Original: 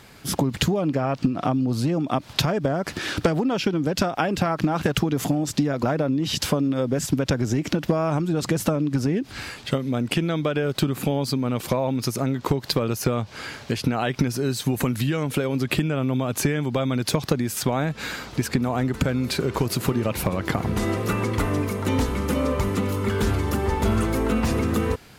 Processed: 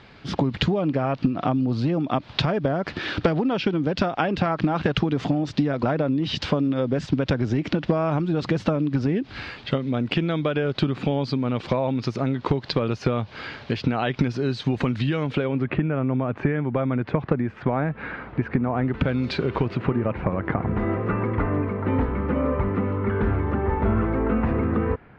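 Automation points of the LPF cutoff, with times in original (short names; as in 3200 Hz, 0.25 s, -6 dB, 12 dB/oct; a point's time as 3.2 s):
LPF 24 dB/oct
15.29 s 4200 Hz
15.71 s 2100 Hz
18.74 s 2100 Hz
19.24 s 4500 Hz
20.05 s 2000 Hz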